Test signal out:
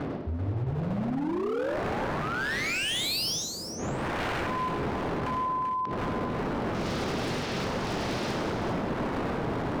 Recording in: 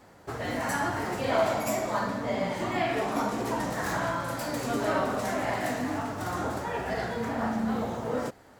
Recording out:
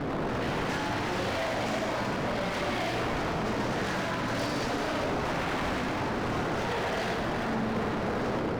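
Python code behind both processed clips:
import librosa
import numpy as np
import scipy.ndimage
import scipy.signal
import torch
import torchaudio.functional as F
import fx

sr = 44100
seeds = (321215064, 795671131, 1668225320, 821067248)

p1 = fx.dmg_wind(x, sr, seeds[0], corner_hz=390.0, level_db=-28.0)
p2 = scipy.signal.sosfilt(scipy.signal.butter(2, 100.0, 'highpass', fs=sr, output='sos'), p1)
p3 = fx.over_compress(p2, sr, threshold_db=-35.0, ratio=-1.0)
p4 = p2 + F.gain(torch.from_numpy(p3), 2.5).numpy()
p5 = scipy.signal.sosfilt(scipy.signal.butter(6, 5600.0, 'lowpass', fs=sr, output='sos'), p4)
p6 = fx.echo_feedback(p5, sr, ms=61, feedback_pct=33, wet_db=-8.5)
p7 = fx.dynamic_eq(p6, sr, hz=1100.0, q=1.4, threshold_db=-29.0, ratio=4.0, max_db=-5)
p8 = 10.0 ** (-22.5 / 20.0) * (np.abs((p7 / 10.0 ** (-22.5 / 20.0) + 3.0) % 4.0 - 2.0) - 1.0)
p9 = p8 + fx.echo_multitap(p8, sr, ms=(103, 388), db=(-7.0, -8.5), dry=0)
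y = F.gain(torch.from_numpy(p9), -4.0).numpy()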